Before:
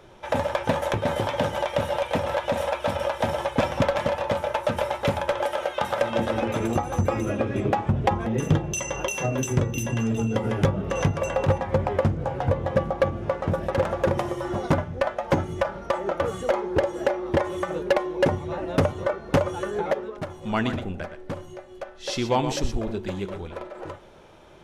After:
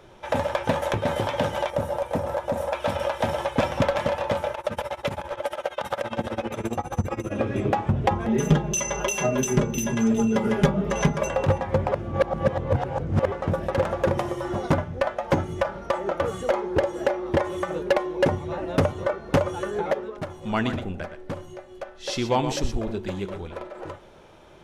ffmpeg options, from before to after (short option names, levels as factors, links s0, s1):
-filter_complex "[0:a]asettb=1/sr,asplit=3[s0][s1][s2];[s0]atrim=end=1.704[s3];[s1]atrim=start=1.7:end=2.73,asetpts=PTS-STARTPTS,afade=t=in:d=0.004:c=qsin,afade=t=out:st=1.026:d=0.004:c=qsin,equalizer=f=3000:t=o:w=1.9:g=-12[s4];[s2]atrim=start=2.726[s5];[s3][s4]acrossfade=d=0.004:c1=hsin:c2=qsin[s6];[s6][s5]acrossfade=d=0.004:c1=qsin:c2=hsin,asettb=1/sr,asplit=3[s7][s8][s9];[s7]atrim=end=4.534[s10];[s8]atrim=start=4.53:end=7.35,asetpts=PTS-STARTPTS,afade=t=in:d=0.004:c=qsin,afade=t=out:st=2.816:d=0.004:c=qsin,tremolo=f=15:d=0.9[s11];[s9]atrim=start=7.346[s12];[s10][s11]acrossfade=d=0.004:c1=hsin:c2=qsin[s13];[s13][s12]acrossfade=d=0.004:c1=qsin:c2=hsin,asettb=1/sr,asplit=3[s14][s15][s16];[s14]atrim=end=8.284[s17];[s15]atrim=start=8.28:end=11.28,asetpts=PTS-STARTPTS,afade=t=in:d=0.004:c=qsin,afade=t=out:st=2.996:d=0.004:c=qsin,aecho=1:1:4.9:0.96,atrim=end_sample=132300[s18];[s16]atrim=start=11.276[s19];[s17][s18]acrossfade=d=0.004:c1=hsin:c2=qsin[s20];[s20][s19]acrossfade=d=0.004:c1=qsin:c2=hsin,asplit=3[s21][s22][s23];[s21]atrim=end=11.922[s24];[s22]atrim=start=11.918:end=13.322,asetpts=PTS-STARTPTS,areverse[s25];[s23]atrim=start=13.318[s26];[s24][s25]acrossfade=d=0.004:c1=hsin:c2=hsin[s27];[s27][s26]acrossfade=d=0.004:c1=hsin:c2=hsin"